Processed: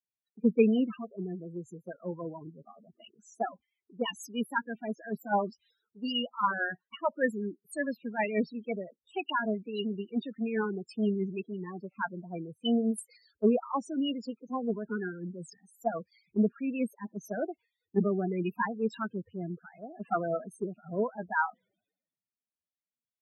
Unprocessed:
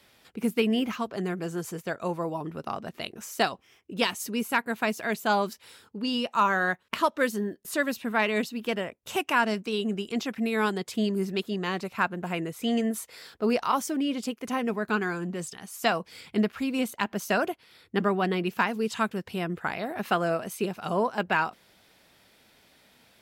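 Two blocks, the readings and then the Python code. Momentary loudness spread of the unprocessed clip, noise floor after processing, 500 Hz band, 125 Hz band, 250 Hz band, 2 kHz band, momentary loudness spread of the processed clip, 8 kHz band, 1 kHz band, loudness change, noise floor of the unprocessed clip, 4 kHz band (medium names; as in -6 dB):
8 LU, under -85 dBFS, -3.5 dB, -3.5 dB, -2.5 dB, -7.5 dB, 12 LU, -12.0 dB, -6.5 dB, -4.0 dB, -61 dBFS, -7.0 dB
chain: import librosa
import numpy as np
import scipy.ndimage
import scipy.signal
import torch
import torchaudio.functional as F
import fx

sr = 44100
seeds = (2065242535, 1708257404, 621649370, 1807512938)

y = fx.spec_topn(x, sr, count=8)
y = fx.rotary_switch(y, sr, hz=6.3, then_hz=0.7, switch_at_s=17.3)
y = fx.band_widen(y, sr, depth_pct=100)
y = y * 10.0 ** (-1.5 / 20.0)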